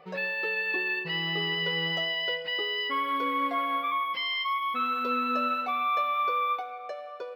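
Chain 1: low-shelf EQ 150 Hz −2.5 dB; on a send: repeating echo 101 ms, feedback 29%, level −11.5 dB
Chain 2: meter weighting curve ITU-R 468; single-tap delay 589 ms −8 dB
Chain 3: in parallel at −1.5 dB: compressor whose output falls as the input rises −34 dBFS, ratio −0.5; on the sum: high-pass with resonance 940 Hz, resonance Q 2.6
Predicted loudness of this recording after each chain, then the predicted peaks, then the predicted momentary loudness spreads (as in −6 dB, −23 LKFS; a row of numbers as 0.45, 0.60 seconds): −27.5, −22.0, −21.5 LKFS; −17.5, −13.0, −13.0 dBFS; 3, 5, 5 LU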